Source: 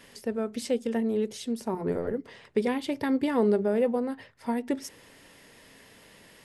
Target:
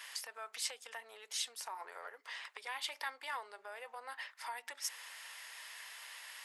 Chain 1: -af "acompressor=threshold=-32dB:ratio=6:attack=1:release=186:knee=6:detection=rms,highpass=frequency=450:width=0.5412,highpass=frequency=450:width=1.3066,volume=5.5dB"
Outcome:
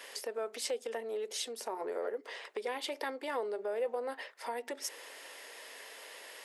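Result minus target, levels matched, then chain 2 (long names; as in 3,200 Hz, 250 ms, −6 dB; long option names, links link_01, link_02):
500 Hz band +14.0 dB
-af "acompressor=threshold=-32dB:ratio=6:attack=1:release=186:knee=6:detection=rms,highpass=frequency=930:width=0.5412,highpass=frequency=930:width=1.3066,volume=5.5dB"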